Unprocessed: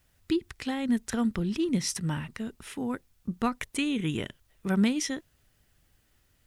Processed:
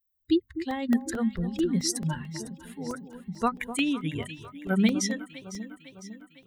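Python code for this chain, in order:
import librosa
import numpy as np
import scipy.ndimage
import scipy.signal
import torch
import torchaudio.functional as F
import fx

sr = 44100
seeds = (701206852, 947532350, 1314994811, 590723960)

y = fx.bin_expand(x, sr, power=2.0)
y = fx.hum_notches(y, sr, base_hz=50, count=5)
y = fx.echo_alternate(y, sr, ms=252, hz=970.0, feedback_pct=74, wet_db=-11.0)
y = fx.buffer_crackle(y, sr, first_s=0.71, period_s=0.22, block=64, kind='zero')
y = F.gain(torch.from_numpy(y), 5.5).numpy()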